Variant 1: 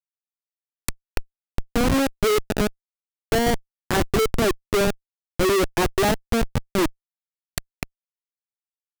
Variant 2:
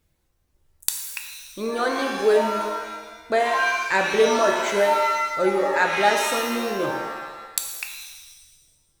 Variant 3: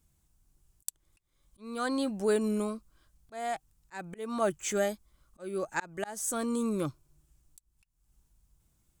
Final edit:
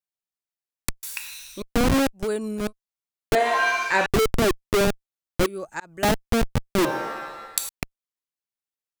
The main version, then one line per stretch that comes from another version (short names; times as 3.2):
1
1.03–1.62 from 2
2.21–2.65 from 3, crossfade 0.16 s
3.35–4.06 from 2
5.46–6.03 from 3
6.85–7.69 from 2